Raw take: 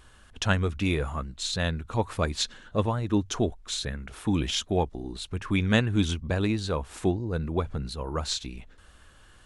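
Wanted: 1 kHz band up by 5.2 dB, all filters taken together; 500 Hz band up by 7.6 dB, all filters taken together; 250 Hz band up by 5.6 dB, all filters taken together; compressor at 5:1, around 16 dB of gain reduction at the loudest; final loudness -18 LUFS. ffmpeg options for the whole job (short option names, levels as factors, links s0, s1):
-af "equalizer=f=250:t=o:g=5,equalizer=f=500:t=o:g=7,equalizer=f=1000:t=o:g=4,acompressor=threshold=0.0251:ratio=5,volume=7.94"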